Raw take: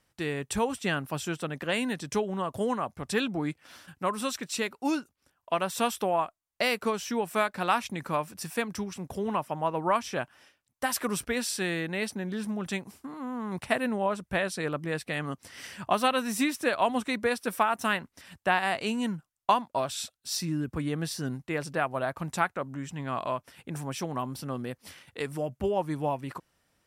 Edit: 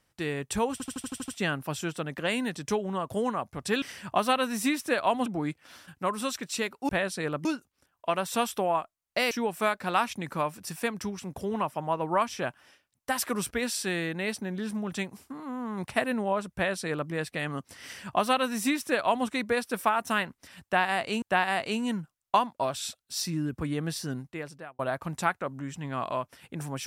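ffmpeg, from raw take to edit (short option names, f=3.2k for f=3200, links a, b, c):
-filter_complex "[0:a]asplit=15[a][b][c][d][e][f][g][h][i][j][k][l][m][n][o];[a]atrim=end=0.802[p];[b]atrim=start=0.718:end=0.802[q];[c]atrim=start=0.718:end=0.802[r];[d]atrim=start=0.718:end=0.802[s];[e]atrim=start=0.718:end=0.802[t];[f]atrim=start=0.718:end=0.802[u];[g]atrim=start=0.718:end=0.802[v];[h]atrim=start=0.718:end=3.262[w];[i]atrim=start=15.568:end=17.012[x];[j]atrim=start=3.258:end=4.892[y];[k]atrim=start=14.288:end=14.852[z];[l]atrim=start=4.888:end=6.752[aa];[m]atrim=start=7.048:end=18.962[ab];[n]atrim=start=18.368:end=21.94,asetpts=PTS-STARTPTS,afade=t=out:st=2.802:d=0.77[ac];[o]atrim=start=21.94,asetpts=PTS-STARTPTS,afade=t=in:d=0.004:c=hsin[ad];[p][q]acrossfade=d=0.004:c1=hsin:c2=hsin[ae];[ae][r]acrossfade=d=0.004:c1=hsin:c2=hsin[af];[af][s]acrossfade=d=0.004:c1=hsin:c2=hsin[ag];[ag][t]acrossfade=d=0.004:c1=hsin:c2=hsin[ah];[ah][u]acrossfade=d=0.004:c1=hsin:c2=hsin[ai];[ai][v]acrossfade=d=0.004:c1=hsin:c2=hsin[aj];[aj][w]acrossfade=d=0.004:c1=hsin:c2=hsin[ak];[ak][x]acrossfade=d=0.004:c1=hsin:c2=hsin[al];[al][y]acrossfade=d=0.004:c1=hsin:c2=hsin[am];[am][z]acrossfade=d=0.004:c1=hsin:c2=hsin[an];[an][aa]acrossfade=d=0.004:c1=hsin:c2=hsin[ao];[ao][ab]acrossfade=d=0.004:c1=hsin:c2=hsin[ap];[ac][ad]concat=n=2:v=0:a=1[aq];[ap][aq]acrossfade=d=0.004:c1=hsin:c2=hsin"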